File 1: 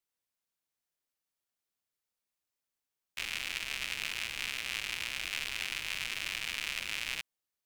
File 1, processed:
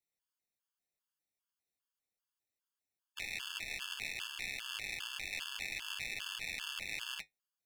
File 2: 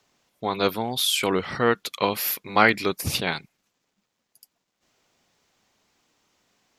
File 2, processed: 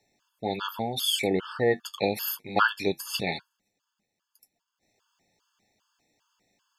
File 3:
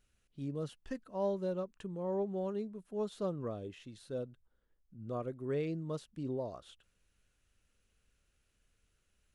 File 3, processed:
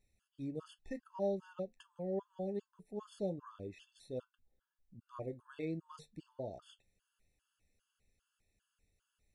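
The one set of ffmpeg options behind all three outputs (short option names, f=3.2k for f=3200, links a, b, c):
-af "flanger=delay=9.5:depth=1.1:regen=-61:speed=0.85:shape=triangular,afftfilt=real='re*gt(sin(2*PI*2.5*pts/sr)*(1-2*mod(floor(b*sr/1024/880),2)),0)':imag='im*gt(sin(2*PI*2.5*pts/sr)*(1-2*mod(floor(b*sr/1024/880),2)),0)':win_size=1024:overlap=0.75,volume=2.5dB"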